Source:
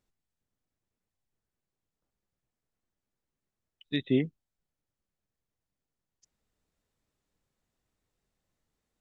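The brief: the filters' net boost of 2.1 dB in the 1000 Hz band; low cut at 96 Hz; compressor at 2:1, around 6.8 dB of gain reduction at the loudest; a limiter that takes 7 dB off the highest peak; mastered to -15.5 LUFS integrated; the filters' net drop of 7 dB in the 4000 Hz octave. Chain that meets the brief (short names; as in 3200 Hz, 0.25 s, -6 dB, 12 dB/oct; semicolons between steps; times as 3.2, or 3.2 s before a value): HPF 96 Hz; bell 1000 Hz +4 dB; bell 4000 Hz -8 dB; compressor 2:1, threshold -32 dBFS; gain +26 dB; limiter -2.5 dBFS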